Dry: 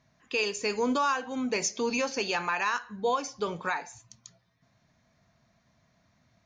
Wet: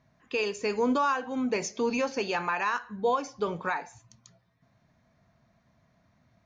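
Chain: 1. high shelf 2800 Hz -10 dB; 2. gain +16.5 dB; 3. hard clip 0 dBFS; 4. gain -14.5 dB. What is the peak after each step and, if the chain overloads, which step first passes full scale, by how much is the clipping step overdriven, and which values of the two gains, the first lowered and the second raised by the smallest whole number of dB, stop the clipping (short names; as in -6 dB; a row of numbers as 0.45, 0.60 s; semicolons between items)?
-19.0, -2.5, -2.5, -17.0 dBFS; no overload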